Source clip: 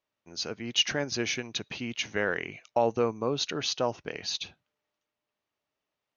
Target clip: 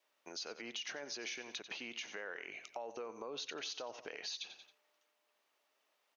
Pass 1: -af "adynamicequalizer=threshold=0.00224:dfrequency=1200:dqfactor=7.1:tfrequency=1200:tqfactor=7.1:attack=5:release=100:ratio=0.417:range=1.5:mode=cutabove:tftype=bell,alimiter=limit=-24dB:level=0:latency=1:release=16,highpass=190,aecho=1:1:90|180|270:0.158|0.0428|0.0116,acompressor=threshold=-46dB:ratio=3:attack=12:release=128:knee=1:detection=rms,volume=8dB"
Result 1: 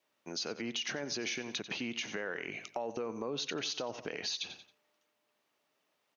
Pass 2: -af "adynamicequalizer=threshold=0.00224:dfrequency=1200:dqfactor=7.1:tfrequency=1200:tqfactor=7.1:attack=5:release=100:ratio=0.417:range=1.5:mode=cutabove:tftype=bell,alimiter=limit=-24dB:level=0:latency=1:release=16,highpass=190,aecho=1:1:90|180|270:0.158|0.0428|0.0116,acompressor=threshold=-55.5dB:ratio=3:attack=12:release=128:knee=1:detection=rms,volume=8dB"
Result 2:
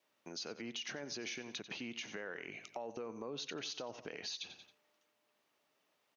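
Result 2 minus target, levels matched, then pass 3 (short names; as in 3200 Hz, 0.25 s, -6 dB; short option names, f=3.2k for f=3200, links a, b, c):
250 Hz band +6.0 dB
-af "adynamicequalizer=threshold=0.00224:dfrequency=1200:dqfactor=7.1:tfrequency=1200:tqfactor=7.1:attack=5:release=100:ratio=0.417:range=1.5:mode=cutabove:tftype=bell,alimiter=limit=-24dB:level=0:latency=1:release=16,highpass=460,aecho=1:1:90|180|270:0.158|0.0428|0.0116,acompressor=threshold=-55.5dB:ratio=3:attack=12:release=128:knee=1:detection=rms,volume=8dB"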